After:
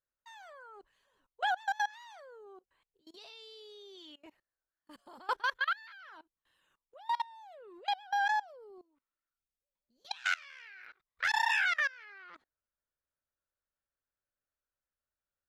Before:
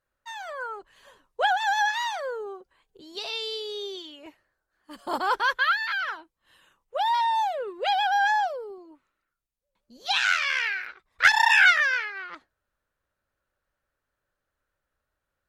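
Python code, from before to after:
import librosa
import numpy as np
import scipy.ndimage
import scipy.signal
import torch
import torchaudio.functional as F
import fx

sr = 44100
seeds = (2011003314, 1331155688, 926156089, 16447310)

y = fx.level_steps(x, sr, step_db=23)
y = y * 10.0 ** (-6.0 / 20.0)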